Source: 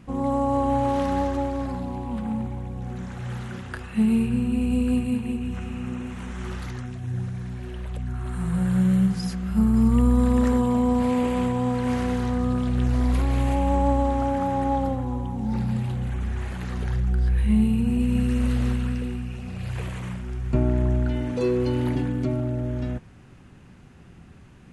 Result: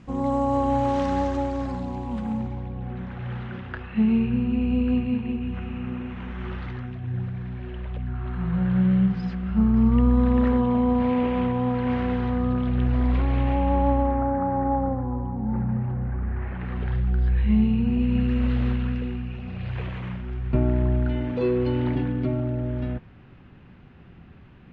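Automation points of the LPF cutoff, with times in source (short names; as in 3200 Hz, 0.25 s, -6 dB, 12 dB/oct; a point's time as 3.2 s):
LPF 24 dB/oct
2.33 s 7400 Hz
2.81 s 3300 Hz
13.87 s 3300 Hz
14.3 s 1700 Hz
16.19 s 1700 Hz
17 s 3600 Hz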